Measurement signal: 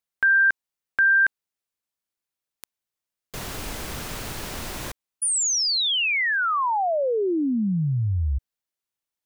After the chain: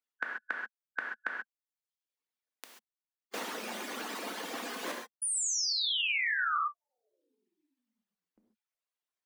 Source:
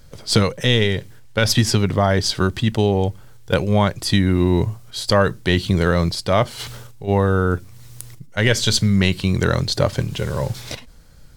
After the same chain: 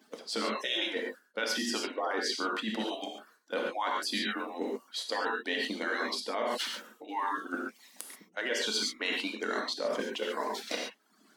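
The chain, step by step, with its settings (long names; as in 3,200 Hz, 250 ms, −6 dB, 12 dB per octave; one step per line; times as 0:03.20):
harmonic-percussive split with one part muted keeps percussive
in parallel at +1 dB: brickwall limiter −11.5 dBFS
on the sum: elliptic high-pass filter 220 Hz, stop band 40 dB
reverb reduction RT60 0.77 s
high-shelf EQ 5,000 Hz −10.5 dB
reverb whose tail is shaped and stops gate 160 ms flat, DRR 1.5 dB
reversed playback
downward compressor 6 to 1, threshold −25 dBFS
reversed playback
low-shelf EQ 490 Hz −4.5 dB
level −3.5 dB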